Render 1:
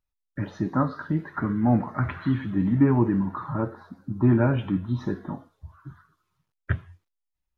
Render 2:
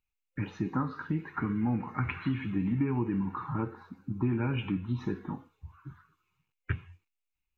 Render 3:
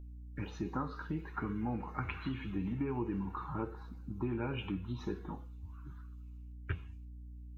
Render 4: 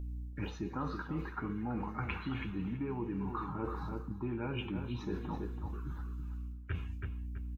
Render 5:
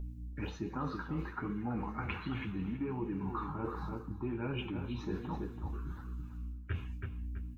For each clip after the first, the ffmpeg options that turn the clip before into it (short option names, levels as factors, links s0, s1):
-af "superequalizer=8b=0.282:12b=3.55:14b=0.708:16b=0.447,acompressor=threshold=0.0794:ratio=6,volume=0.668"
-af "aeval=exprs='val(0)+0.00562*(sin(2*PI*60*n/s)+sin(2*PI*2*60*n/s)/2+sin(2*PI*3*60*n/s)/3+sin(2*PI*4*60*n/s)/4+sin(2*PI*5*60*n/s)/5)':c=same,equalizer=f=125:t=o:w=1:g=-10,equalizer=f=250:t=o:w=1:g=-8,equalizer=f=1000:t=o:w=1:g=-4,equalizer=f=2000:t=o:w=1:g=-9,volume=1.26"
-filter_complex "[0:a]asplit=2[s0][s1];[s1]adelay=329,lowpass=f=2900:p=1,volume=0.316,asplit=2[s2][s3];[s3]adelay=329,lowpass=f=2900:p=1,volume=0.27,asplit=2[s4][s5];[s5]adelay=329,lowpass=f=2900:p=1,volume=0.27[s6];[s0][s2][s4][s6]amix=inputs=4:normalize=0,areverse,acompressor=threshold=0.00708:ratio=6,areverse,volume=2.66"
-af "flanger=delay=4.7:depth=9.5:regen=-43:speed=1.3:shape=triangular,volume=1.58"